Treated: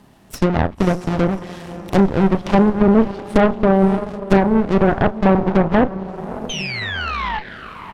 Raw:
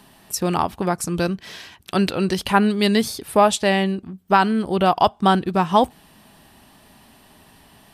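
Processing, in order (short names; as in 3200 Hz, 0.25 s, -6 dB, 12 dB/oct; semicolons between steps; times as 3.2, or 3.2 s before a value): half-waves squared off; painted sound fall, 6.49–7.39, 830–3200 Hz -19 dBFS; treble ducked by the level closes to 700 Hz, closed at -11 dBFS; doubler 36 ms -11 dB; diffused feedback echo 0.598 s, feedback 44%, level -10.5 dB; added harmonics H 4 -7 dB, 8 -19 dB, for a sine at -1.5 dBFS; tilt shelf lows +3.5 dB, about 910 Hz; gain -6 dB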